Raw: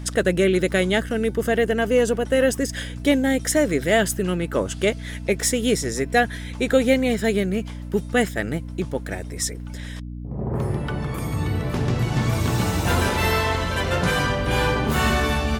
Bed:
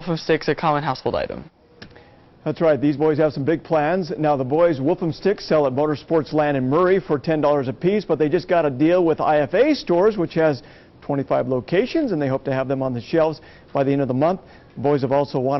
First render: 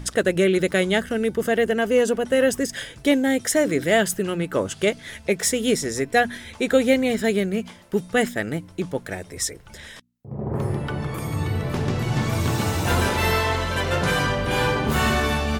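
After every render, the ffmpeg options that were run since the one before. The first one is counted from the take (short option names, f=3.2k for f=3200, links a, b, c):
-af "bandreject=f=60:t=h:w=4,bandreject=f=120:t=h:w=4,bandreject=f=180:t=h:w=4,bandreject=f=240:t=h:w=4,bandreject=f=300:t=h:w=4"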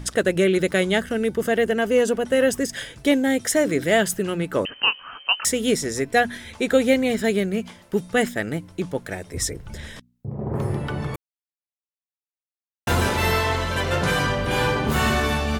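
-filter_complex "[0:a]asettb=1/sr,asplit=3[a][b][c];[a]atrim=end=4.654[d];[b]atrim=start=4.65:end=5.45,asetpts=PTS-STARTPTS,afade=t=in:d=0.004:c=qsin,afade=t=out:st=0.796:d=0.004:c=qsin,lowpass=f=2.7k:t=q:w=0.5098,lowpass=f=2.7k:t=q:w=0.6013,lowpass=f=2.7k:t=q:w=0.9,lowpass=f=2.7k:t=q:w=2.563,afreqshift=-3200[e];[c]atrim=start=5.446[f];[d][e]acrossfade=d=0.004:c1=hsin:c2=qsin[g];[g][f]acrossfade=d=0.004:c1=qsin:c2=hsin,asettb=1/sr,asplit=3[h][i][j];[h]atrim=end=9.344[k];[i]atrim=start=9.34:end=10.31,asetpts=PTS-STARTPTS,afade=t=in:d=0.004:c=qsin,afade=t=out:st=0.966:d=0.004:c=qsin,lowshelf=f=390:g=11[l];[j]atrim=start=10.306[m];[k][l]acrossfade=d=0.004:c1=hsin:c2=qsin[n];[n][m]acrossfade=d=0.004:c1=qsin:c2=hsin,asplit=3[o][p][q];[o]atrim=end=11.16,asetpts=PTS-STARTPTS,afade=t=out:st=11.156:d=0.004:c=hsin[r];[p]atrim=start=11.16:end=12.87,asetpts=PTS-STARTPTS,volume=0[s];[q]atrim=start=12.87,asetpts=PTS-STARTPTS,afade=t=in:d=0.004:c=hsin[t];[r][s][t]concat=n=3:v=0:a=1"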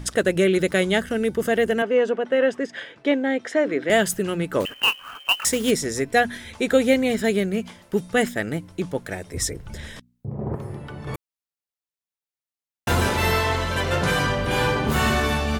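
-filter_complex "[0:a]asettb=1/sr,asplit=3[a][b][c];[a]atrim=end=1.824[d];[b]atrim=start=1.82:end=3.9,asetpts=PTS-STARTPTS,afade=t=in:d=0.004:c=qsin,afade=t=out:st=2.076:d=0.004:c=qsin,highpass=280,lowpass=2.7k[e];[c]atrim=start=3.896[f];[d][e]acrossfade=d=0.004:c1=hsin:c2=qsin[g];[g][f]acrossfade=d=0.004:c1=qsin:c2=hsin,asettb=1/sr,asplit=3[h][i][j];[h]atrim=end=4.604[k];[i]atrim=start=4.6:end=5.71,asetpts=PTS-STARTPTS,afade=t=in:d=0.004:c=qsin,afade=t=out:st=1.106:d=0.004:c=qsin,acrusher=bits=3:mode=log:mix=0:aa=0.000001[l];[j]atrim=start=5.706[m];[k][l]acrossfade=d=0.004:c1=hsin:c2=qsin[n];[n][m]acrossfade=d=0.004:c1=qsin:c2=hsin,asplit=3[o][p][q];[o]atrim=end=10.552[r];[p]atrim=start=10.548:end=11.072,asetpts=PTS-STARTPTS,volume=-8.5dB[s];[q]atrim=start=11.068[t];[r][s]acrossfade=d=0.004:c1=hsin:c2=hsin[u];[u][t]acrossfade=d=0.004:c1=hsin:c2=hsin"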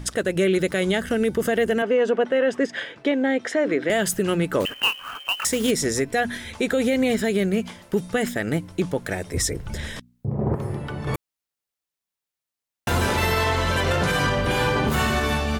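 -af "dynaudnorm=f=110:g=13:m=5dB,alimiter=limit=-12.5dB:level=0:latency=1:release=83"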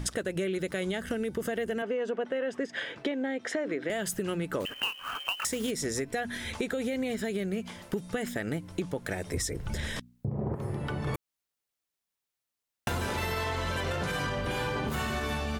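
-af "acompressor=threshold=-29dB:ratio=6"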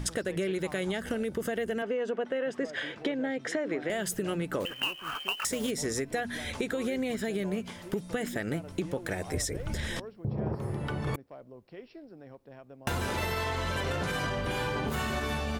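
-filter_complex "[1:a]volume=-28dB[a];[0:a][a]amix=inputs=2:normalize=0"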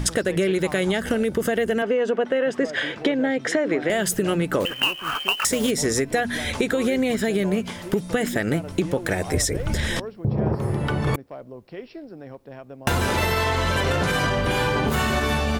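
-af "volume=9.5dB"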